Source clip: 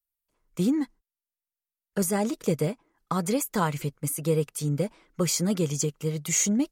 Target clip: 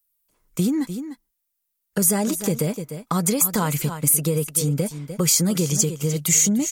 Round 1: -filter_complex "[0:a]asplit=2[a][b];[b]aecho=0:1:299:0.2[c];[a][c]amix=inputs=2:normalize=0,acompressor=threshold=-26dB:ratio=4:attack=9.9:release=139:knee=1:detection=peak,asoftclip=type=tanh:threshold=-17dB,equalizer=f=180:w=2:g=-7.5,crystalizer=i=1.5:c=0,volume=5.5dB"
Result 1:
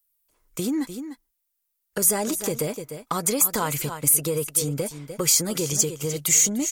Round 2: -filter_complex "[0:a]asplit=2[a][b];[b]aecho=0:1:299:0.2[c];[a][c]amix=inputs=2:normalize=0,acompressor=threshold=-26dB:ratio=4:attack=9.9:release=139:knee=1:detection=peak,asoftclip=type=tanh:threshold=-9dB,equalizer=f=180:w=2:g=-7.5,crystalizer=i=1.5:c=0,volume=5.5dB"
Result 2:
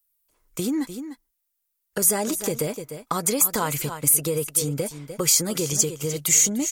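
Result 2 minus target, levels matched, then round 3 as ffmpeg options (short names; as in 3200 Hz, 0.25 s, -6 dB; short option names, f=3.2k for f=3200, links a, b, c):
250 Hz band -4.5 dB
-filter_complex "[0:a]asplit=2[a][b];[b]aecho=0:1:299:0.2[c];[a][c]amix=inputs=2:normalize=0,acompressor=threshold=-26dB:ratio=4:attack=9.9:release=139:knee=1:detection=peak,asoftclip=type=tanh:threshold=-9dB,equalizer=f=180:w=2:g=3.5,crystalizer=i=1.5:c=0,volume=5.5dB"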